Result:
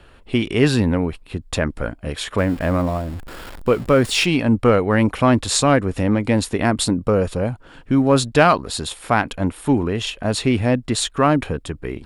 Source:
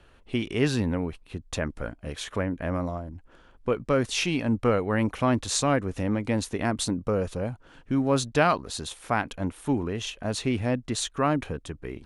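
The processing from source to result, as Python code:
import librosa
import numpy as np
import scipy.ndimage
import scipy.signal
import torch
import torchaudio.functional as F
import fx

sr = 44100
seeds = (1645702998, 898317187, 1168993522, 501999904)

p1 = fx.zero_step(x, sr, step_db=-39.5, at=(2.38, 4.25))
p2 = fx.notch(p1, sr, hz=6100.0, q=7.3)
p3 = np.clip(p2, -10.0 ** (-17.0 / 20.0), 10.0 ** (-17.0 / 20.0))
p4 = p2 + (p3 * librosa.db_to_amplitude(-9.5))
y = p4 * librosa.db_to_amplitude(6.0)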